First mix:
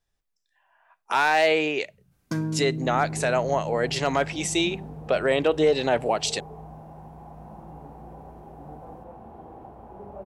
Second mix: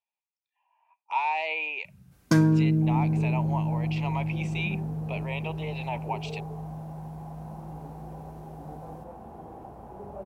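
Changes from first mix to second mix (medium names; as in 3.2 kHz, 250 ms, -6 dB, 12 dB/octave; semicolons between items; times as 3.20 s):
speech: add two resonant band-passes 1.5 kHz, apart 1.4 oct; first sound +8.0 dB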